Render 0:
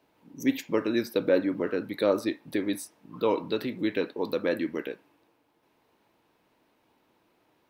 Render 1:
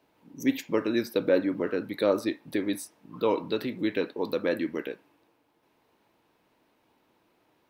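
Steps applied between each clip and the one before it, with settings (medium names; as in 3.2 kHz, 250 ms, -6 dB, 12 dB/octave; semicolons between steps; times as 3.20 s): no audible change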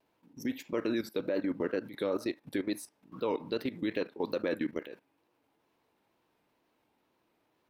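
wow and flutter 88 cents; level held to a coarse grid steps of 15 dB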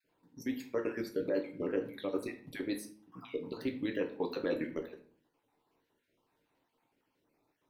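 random holes in the spectrogram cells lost 33%; simulated room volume 43 m³, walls mixed, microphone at 0.4 m; trim -3 dB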